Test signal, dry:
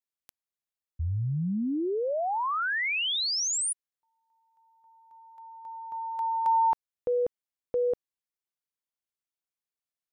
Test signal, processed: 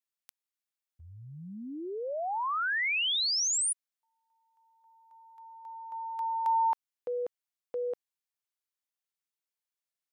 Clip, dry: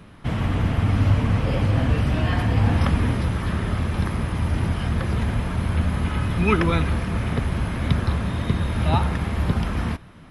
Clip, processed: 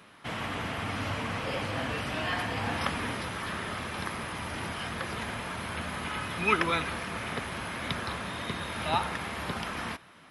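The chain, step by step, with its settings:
high-pass filter 930 Hz 6 dB per octave

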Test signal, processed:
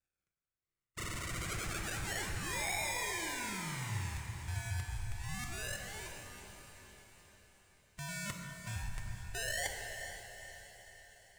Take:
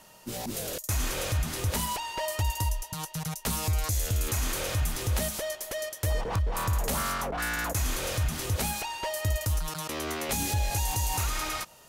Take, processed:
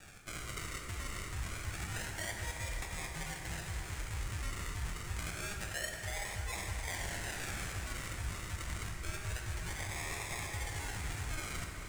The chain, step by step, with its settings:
spectral magnitudes quantised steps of 30 dB
reverb reduction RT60 0.56 s
parametric band 150 Hz −2 dB 0.56 octaves
reversed playback
downward compressor 10 to 1, threshold −41 dBFS
reversed playback
sample-and-hold swept by an LFO 42×, swing 60% 0.27 Hz
octave-band graphic EQ 250/500/2,000/8,000 Hz −11/−8/+8/+12 dB
on a send: feedback delay with all-pass diffusion 455 ms, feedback 54%, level −9.5 dB
on the sum: dense smooth reverb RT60 2.5 s, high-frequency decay 0.55×, DRR 2 dB
level +2.5 dB

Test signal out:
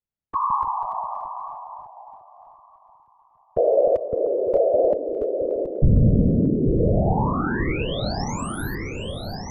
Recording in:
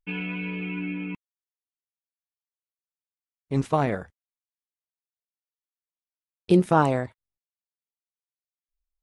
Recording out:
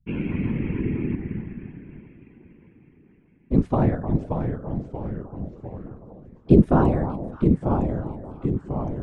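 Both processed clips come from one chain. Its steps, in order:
delay that swaps between a low-pass and a high-pass 304 ms, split 1,200 Hz, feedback 71%, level −11.5 dB
delay with pitch and tempo change per echo 122 ms, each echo −2 semitones, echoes 3, each echo −6 dB
spectral tilt −4 dB per octave
random phases in short frames
level −4 dB

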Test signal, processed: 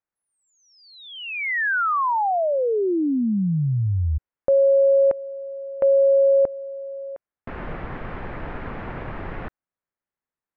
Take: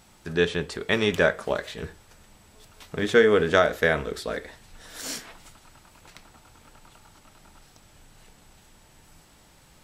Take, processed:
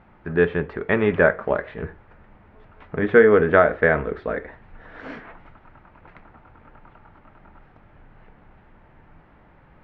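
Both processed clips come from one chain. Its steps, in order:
low-pass filter 2,000 Hz 24 dB per octave
level +4.5 dB

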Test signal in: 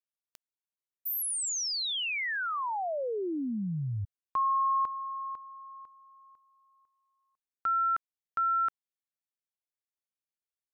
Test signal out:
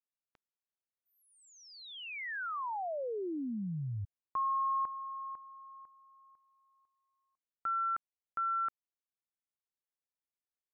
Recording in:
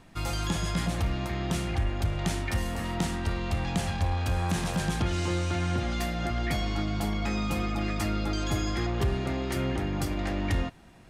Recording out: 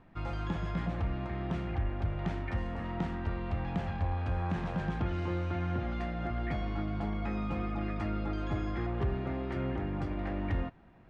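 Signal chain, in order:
low-pass filter 1,900 Hz 12 dB per octave
level −4.5 dB

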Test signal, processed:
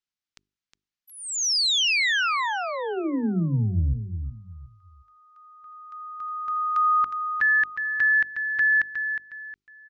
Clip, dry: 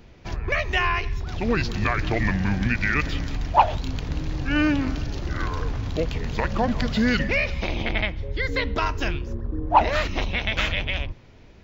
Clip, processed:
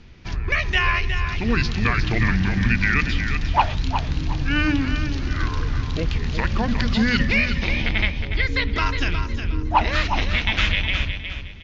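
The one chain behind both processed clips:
low-pass filter 6,300 Hz 24 dB per octave
parametric band 610 Hz −10.5 dB 1.4 octaves
mains-hum notches 50/100/150/200/250/300/350/400 Hz
on a send: repeating echo 362 ms, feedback 29%, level −8 dB
on the sum: level +4.5 dB

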